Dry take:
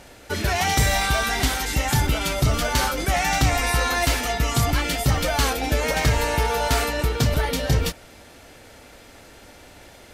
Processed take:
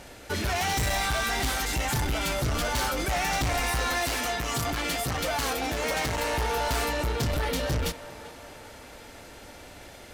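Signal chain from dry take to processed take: soft clip -24 dBFS, distortion -8 dB; 3.98–6.34 low shelf 99 Hz -8.5 dB; narrowing echo 0.396 s, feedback 63%, band-pass 940 Hz, level -12 dB

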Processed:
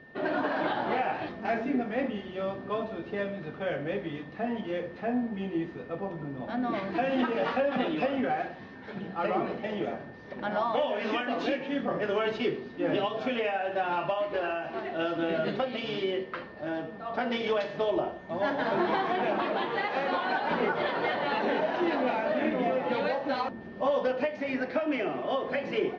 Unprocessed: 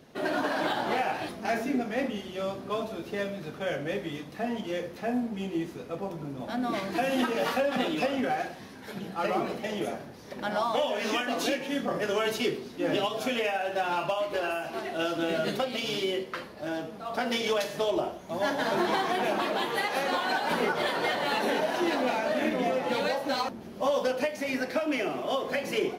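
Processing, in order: whine 1800 Hz -50 dBFS; Gaussian blur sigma 2.4 samples

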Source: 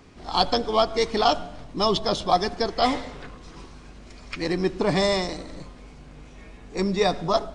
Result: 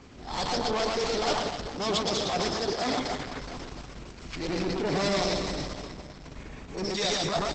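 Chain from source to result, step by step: in parallel at -1.5 dB: compressor 5:1, threshold -33 dBFS, peak gain reduction 17 dB; 6.84–7.24 on the sum: RIAA curve recording; tube stage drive 24 dB, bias 0.7; dynamic EQ 4700 Hz, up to +4 dB, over -43 dBFS, Q 1.5; 1.68–3.25 HPF 60 Hz 12 dB/oct; on a send: reverse bouncing-ball echo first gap 0.12 s, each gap 1.25×, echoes 5; on the sum: transient shaper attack -6 dB, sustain +5 dB; Opus 10 kbps 48000 Hz

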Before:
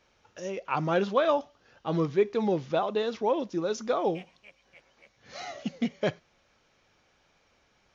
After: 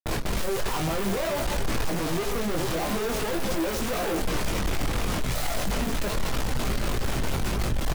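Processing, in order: reverse delay 0.103 s, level -13 dB; HPF 170 Hz 12 dB/oct; high shelf 2700 Hz -10.5 dB; added noise brown -44 dBFS; gate with hold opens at -37 dBFS; fuzz box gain 52 dB, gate -58 dBFS; on a send: echo 0.797 s -19 dB; on the sum: wavefolder -22 dBFS; chorus voices 6, 0.48 Hz, delay 20 ms, depth 4.8 ms; sample leveller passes 2; low shelf 270 Hz +5 dB; gain -4.5 dB

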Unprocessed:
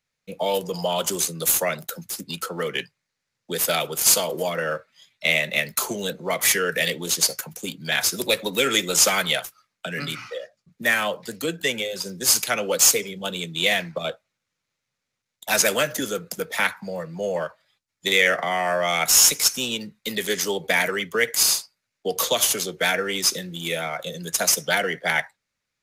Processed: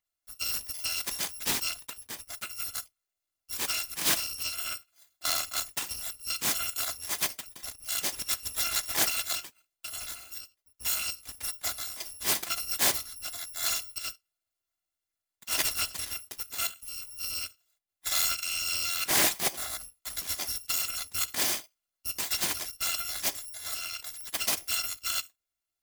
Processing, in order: FFT order left unsorted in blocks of 256 samples; Doppler distortion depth 0.37 ms; gain -7 dB

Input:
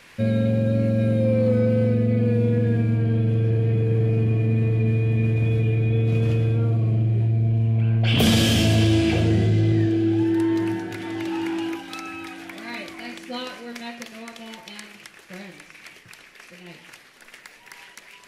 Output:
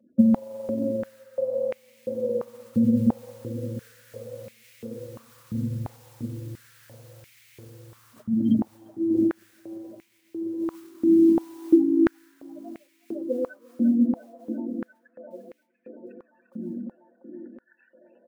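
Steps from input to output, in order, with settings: Wiener smoothing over 41 samples; spectral gate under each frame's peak -10 dB strong; gate -54 dBFS, range -14 dB; comb 3.4 ms, depth 73%; negative-ratio compressor -25 dBFS, ratio -0.5; modulation noise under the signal 35 dB; analogue delay 0.347 s, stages 4096, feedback 80%, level -7.5 dB; stepped high-pass 2.9 Hz 220–2200 Hz; gain +1.5 dB

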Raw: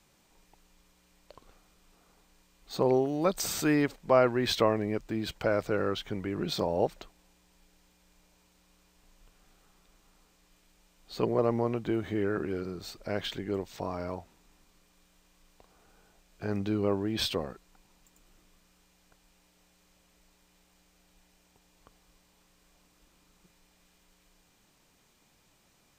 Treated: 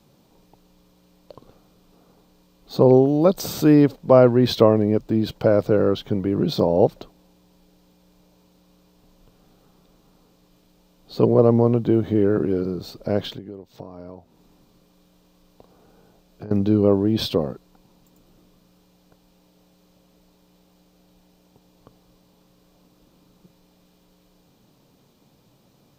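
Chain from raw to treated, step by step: high shelf 5400 Hz +5 dB; 13.32–16.51 compressor 12:1, threshold -45 dBFS, peak gain reduction 18.5 dB; ten-band EQ 125 Hz +12 dB, 250 Hz +8 dB, 500 Hz +8 dB, 1000 Hz +3 dB, 2000 Hz -6 dB, 4000 Hz +4 dB, 8000 Hz -8 dB; gain +1.5 dB

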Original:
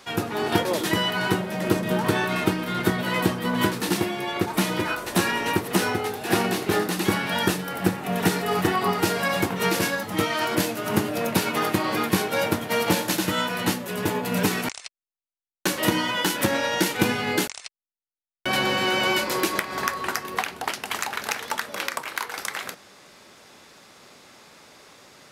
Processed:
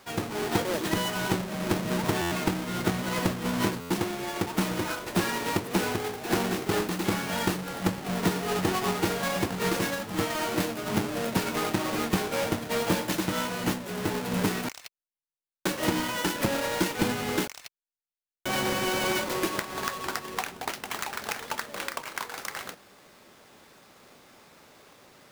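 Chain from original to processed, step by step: half-waves squared off; stuck buffer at 2.21/3.8, samples 512, times 8; gain -9 dB

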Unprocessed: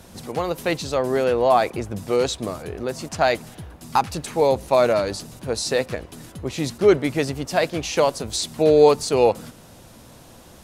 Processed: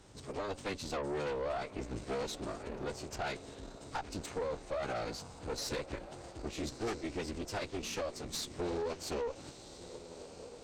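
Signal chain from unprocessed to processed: compressor 12:1, threshold -21 dBFS, peak gain reduction 13 dB; on a send: diffused feedback echo 1.311 s, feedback 42%, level -13 dB; on the sum: formant-preserving pitch shift -10 st; tube stage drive 25 dB, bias 0.75; gain -6 dB

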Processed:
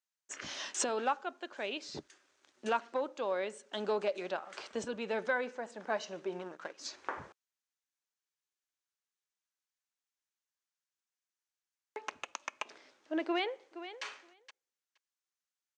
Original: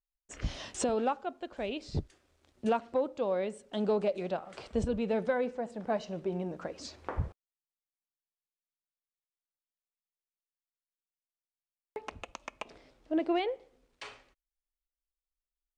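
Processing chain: 6.39–6.86 power-law curve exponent 1.4; speaker cabinet 450–8600 Hz, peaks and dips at 490 Hz -6 dB, 700 Hz -6 dB, 1600 Hz +4 dB, 6300 Hz +5 dB; 13.24–14.03 echo throw 0.47 s, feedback 10%, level -12.5 dB; gain +2.5 dB

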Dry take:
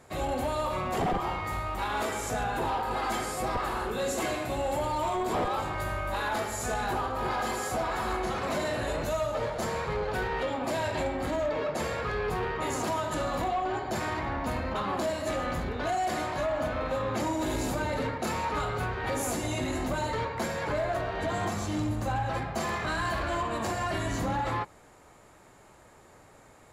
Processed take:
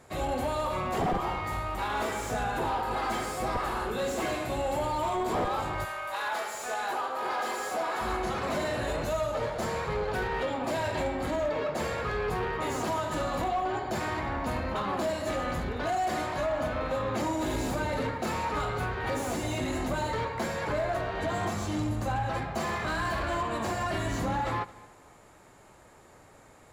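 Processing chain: 5.84–8 HPF 770 Hz -> 300 Hz 12 dB/oct; multi-head echo 74 ms, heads first and third, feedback 43%, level -22 dB; slew limiter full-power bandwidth 66 Hz

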